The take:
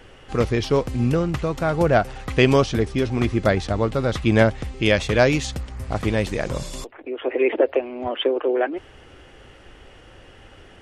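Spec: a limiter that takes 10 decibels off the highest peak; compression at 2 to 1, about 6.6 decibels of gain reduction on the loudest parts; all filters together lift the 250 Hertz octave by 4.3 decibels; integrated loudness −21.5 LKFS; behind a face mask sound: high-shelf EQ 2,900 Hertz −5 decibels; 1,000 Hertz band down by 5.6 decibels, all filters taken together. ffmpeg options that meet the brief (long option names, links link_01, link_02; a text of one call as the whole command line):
ffmpeg -i in.wav -af "equalizer=frequency=250:width_type=o:gain=6,equalizer=frequency=1000:width_type=o:gain=-8.5,acompressor=threshold=-22dB:ratio=2,alimiter=limit=-19.5dB:level=0:latency=1,highshelf=frequency=2900:gain=-5,volume=8dB" out.wav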